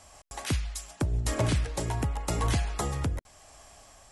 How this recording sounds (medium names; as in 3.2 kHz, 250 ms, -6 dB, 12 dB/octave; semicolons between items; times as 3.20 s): tremolo triangle 0.89 Hz, depth 40%